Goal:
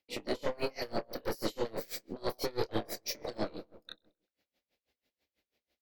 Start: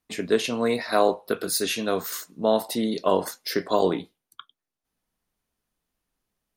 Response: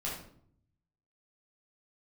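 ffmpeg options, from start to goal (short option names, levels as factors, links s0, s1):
-filter_complex "[0:a]highpass=62,afftfilt=real='re*lt(hypot(re,im),0.398)':imag='im*lt(hypot(re,im),0.398)':win_size=1024:overlap=0.75,equalizer=f=125:t=o:w=1:g=-8,equalizer=f=500:t=o:w=1:g=10,equalizer=f=1000:t=o:w=1:g=-10,equalizer=f=2000:t=o:w=1:g=9,equalizer=f=4000:t=o:w=1:g=9,equalizer=f=8000:t=o:w=1:g=-11,acrossover=split=550|6100[s0][s1][s2];[s0]aeval=exprs='0.15*(cos(1*acos(clip(val(0)/0.15,-1,1)))-cos(1*PI/2))+0.0106*(cos(2*acos(clip(val(0)/0.15,-1,1)))-cos(2*PI/2))+0.00299*(cos(5*acos(clip(val(0)/0.15,-1,1)))-cos(5*PI/2))+0.0473*(cos(6*acos(clip(val(0)/0.15,-1,1)))-cos(6*PI/2))+0.015*(cos(8*acos(clip(val(0)/0.15,-1,1)))-cos(8*PI/2))':c=same[s3];[s1]acompressor=threshold=0.01:ratio=8[s4];[s3][s4][s2]amix=inputs=3:normalize=0,asoftclip=type=tanh:threshold=0.0708,asetrate=49833,aresample=44100,asplit=2[s5][s6];[s6]adelay=27,volume=0.668[s7];[s5][s7]amix=inputs=2:normalize=0,asplit=2[s8][s9];[s9]adelay=130,lowpass=f=1500:p=1,volume=0.141,asplit=2[s10][s11];[s11]adelay=130,lowpass=f=1500:p=1,volume=0.54,asplit=2[s12][s13];[s13]adelay=130,lowpass=f=1500:p=1,volume=0.54,asplit=2[s14][s15];[s15]adelay=130,lowpass=f=1500:p=1,volume=0.54,asplit=2[s16][s17];[s17]adelay=130,lowpass=f=1500:p=1,volume=0.54[s18];[s8][s10][s12][s14][s16][s18]amix=inputs=6:normalize=0,aeval=exprs='val(0)*pow(10,-26*(0.5-0.5*cos(2*PI*6.1*n/s))/20)':c=same"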